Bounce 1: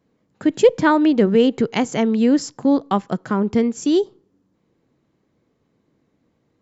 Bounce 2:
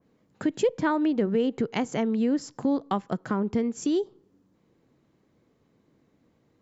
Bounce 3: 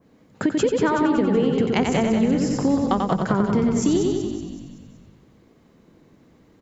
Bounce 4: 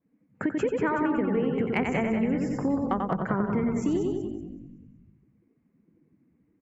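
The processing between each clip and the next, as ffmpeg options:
ffmpeg -i in.wav -af "acompressor=threshold=-29dB:ratio=2,adynamicequalizer=threshold=0.00631:dfrequency=2400:dqfactor=0.7:tfrequency=2400:tqfactor=0.7:attack=5:release=100:ratio=0.375:range=2.5:mode=cutabove:tftype=highshelf" out.wav
ffmpeg -i in.wav -filter_complex "[0:a]asplit=2[link_01][link_02];[link_02]aecho=0:1:90|180|270|360|450|540:0.596|0.28|0.132|0.0618|0.0291|0.0137[link_03];[link_01][link_03]amix=inputs=2:normalize=0,acompressor=threshold=-26dB:ratio=6,asplit=2[link_04][link_05];[link_05]asplit=6[link_06][link_07][link_08][link_09][link_10][link_11];[link_06]adelay=188,afreqshift=-42,volume=-8dB[link_12];[link_07]adelay=376,afreqshift=-84,volume=-13.5dB[link_13];[link_08]adelay=564,afreqshift=-126,volume=-19dB[link_14];[link_09]adelay=752,afreqshift=-168,volume=-24.5dB[link_15];[link_10]adelay=940,afreqshift=-210,volume=-30.1dB[link_16];[link_11]adelay=1128,afreqshift=-252,volume=-35.6dB[link_17];[link_12][link_13][link_14][link_15][link_16][link_17]amix=inputs=6:normalize=0[link_18];[link_04][link_18]amix=inputs=2:normalize=0,volume=9dB" out.wav
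ffmpeg -i in.wav -af "afftdn=noise_reduction=17:noise_floor=-43,highshelf=frequency=2900:width_type=q:width=3:gain=-7.5,asoftclip=type=hard:threshold=-6.5dB,volume=-6.5dB" out.wav

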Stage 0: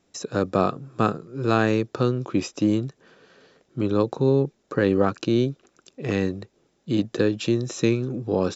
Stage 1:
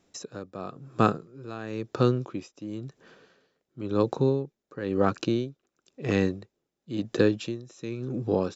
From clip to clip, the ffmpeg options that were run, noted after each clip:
ffmpeg -i in.wav -af "aeval=exprs='val(0)*pow(10,-18*(0.5-0.5*cos(2*PI*0.97*n/s))/20)':channel_layout=same" out.wav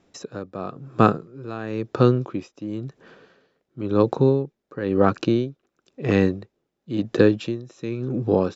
ffmpeg -i in.wav -af "aemphasis=mode=reproduction:type=50fm,volume=5.5dB" out.wav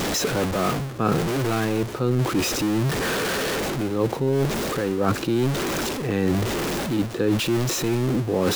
ffmpeg -i in.wav -af "aeval=exprs='val(0)+0.5*0.0596*sgn(val(0))':channel_layout=same,areverse,acompressor=threshold=-24dB:ratio=8,areverse,volume=5.5dB" out.wav

